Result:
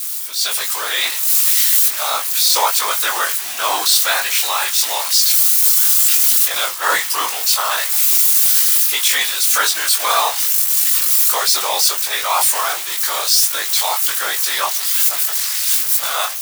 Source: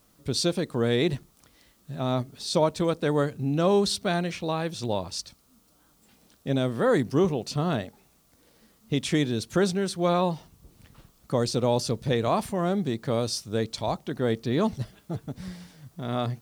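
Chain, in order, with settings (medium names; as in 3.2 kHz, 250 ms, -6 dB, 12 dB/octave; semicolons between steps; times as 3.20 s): zero-crossing glitches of -22 dBFS; 6.49–6.93 s: gate -26 dBFS, range -8 dB; high-pass 960 Hz 24 dB/octave; level rider gain up to 13.5 dB; transient shaper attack -4 dB, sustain +3 dB; wavefolder -7 dBFS; whisper effect; chorus 1.4 Hz, delay 19 ms, depth 3.3 ms; loudness maximiser +7.5 dB; trim -1 dB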